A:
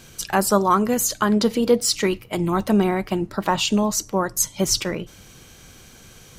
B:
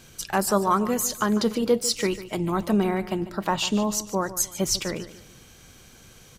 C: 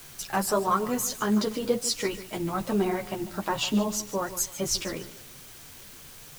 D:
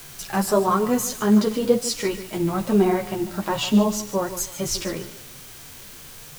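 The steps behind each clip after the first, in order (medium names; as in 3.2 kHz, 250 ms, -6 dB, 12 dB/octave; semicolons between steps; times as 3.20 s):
feedback delay 147 ms, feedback 36%, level -15 dB; trim -4 dB
chorus voices 4, 1 Hz, delay 11 ms, depth 4.1 ms; word length cut 8-bit, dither triangular
harmonic-percussive split harmonic +8 dB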